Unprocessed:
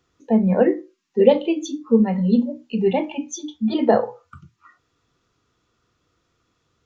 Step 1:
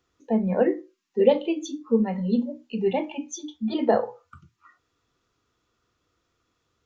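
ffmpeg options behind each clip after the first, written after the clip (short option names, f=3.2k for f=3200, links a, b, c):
-af "equalizer=f=150:w=1.3:g=-4.5,volume=-4dB"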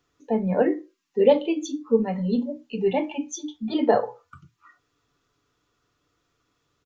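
-af "aecho=1:1:6.9:0.39,volume=1dB"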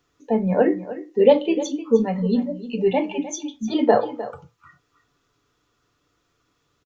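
-af "aecho=1:1:305:0.188,volume=3dB"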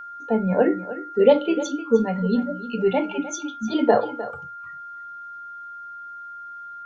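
-af "aeval=exprs='val(0)+0.02*sin(2*PI*1400*n/s)':c=same,volume=-1dB"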